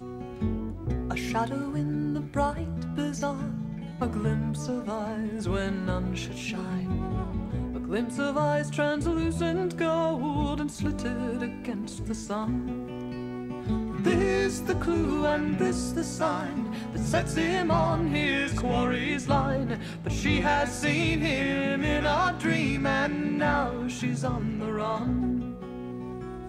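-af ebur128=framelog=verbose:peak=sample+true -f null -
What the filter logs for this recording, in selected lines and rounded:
Integrated loudness:
  I:         -28.5 LUFS
  Threshold: -38.5 LUFS
Loudness range:
  LRA:         4.8 LU
  Threshold: -48.3 LUFS
  LRA low:   -30.9 LUFS
  LRA high:  -26.1 LUFS
Sample peak:
  Peak:      -11.3 dBFS
True peak:
  Peak:      -11.3 dBFS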